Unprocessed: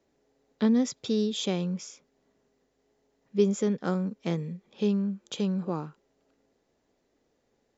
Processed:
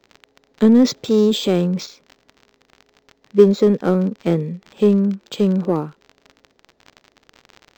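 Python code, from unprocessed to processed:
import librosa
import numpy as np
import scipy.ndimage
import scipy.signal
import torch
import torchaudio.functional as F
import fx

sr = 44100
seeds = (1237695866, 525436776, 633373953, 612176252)

p1 = fx.transient(x, sr, attack_db=-3, sustain_db=7, at=(0.67, 1.86))
p2 = fx.dynamic_eq(p1, sr, hz=400.0, q=0.79, threshold_db=-38.0, ratio=4.0, max_db=7)
p3 = np.clip(p2, -10.0 ** (-20.5 / 20.0), 10.0 ** (-20.5 / 20.0))
p4 = p2 + F.gain(torch.from_numpy(p3), -7.0).numpy()
p5 = fx.dmg_crackle(p4, sr, seeds[0], per_s=79.0, level_db=-34.0)
p6 = np.interp(np.arange(len(p5)), np.arange(len(p5))[::4], p5[::4])
y = F.gain(torch.from_numpy(p6), 5.0).numpy()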